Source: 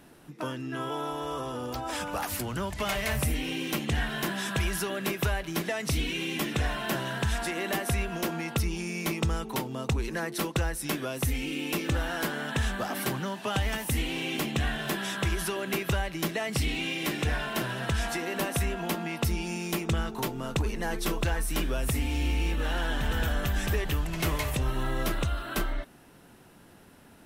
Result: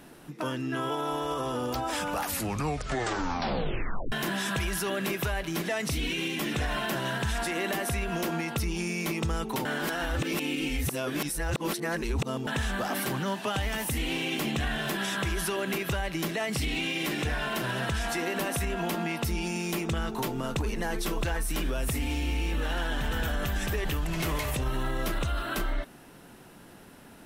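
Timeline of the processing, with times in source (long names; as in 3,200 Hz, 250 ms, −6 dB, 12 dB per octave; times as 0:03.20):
0:02.26: tape stop 1.86 s
0:09.65–0:12.47: reverse
whole clip: parametric band 84 Hz −4.5 dB; brickwall limiter −25.5 dBFS; level +4 dB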